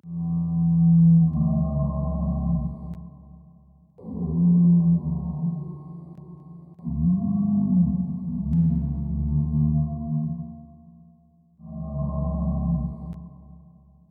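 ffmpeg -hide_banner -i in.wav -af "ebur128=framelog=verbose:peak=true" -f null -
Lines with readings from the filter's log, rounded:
Integrated loudness:
  I:         -23.2 LUFS
  Threshold: -34.8 LUFS
Loudness range:
  LRA:         7.8 LU
  Threshold: -45.2 LUFS
  LRA low:   -30.1 LUFS
  LRA high:  -22.3 LUFS
True peak:
  Peak:      -10.2 dBFS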